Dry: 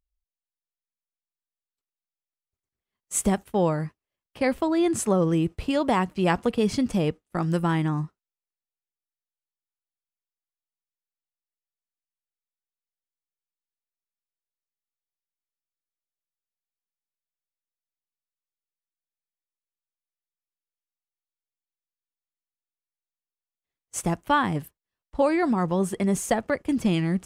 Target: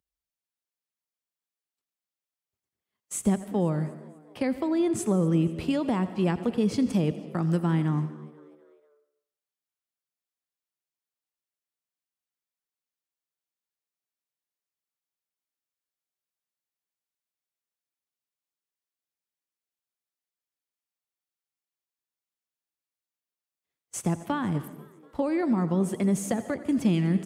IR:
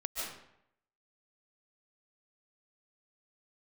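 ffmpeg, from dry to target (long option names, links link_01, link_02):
-filter_complex "[0:a]asplit=2[link_01][link_02];[link_02]aecho=0:1:85:0.133[link_03];[link_01][link_03]amix=inputs=2:normalize=0,acrossover=split=330[link_04][link_05];[link_05]acompressor=threshold=-36dB:ratio=2.5[link_06];[link_04][link_06]amix=inputs=2:normalize=0,highpass=100,asplit=5[link_07][link_08][link_09][link_10][link_11];[link_08]adelay=244,afreqshift=72,volume=-22dB[link_12];[link_09]adelay=488,afreqshift=144,volume=-27.7dB[link_13];[link_10]adelay=732,afreqshift=216,volume=-33.4dB[link_14];[link_11]adelay=976,afreqshift=288,volume=-39dB[link_15];[link_07][link_12][link_13][link_14][link_15]amix=inputs=5:normalize=0,asplit=2[link_16][link_17];[1:a]atrim=start_sample=2205[link_18];[link_17][link_18]afir=irnorm=-1:irlink=0,volume=-15.5dB[link_19];[link_16][link_19]amix=inputs=2:normalize=0"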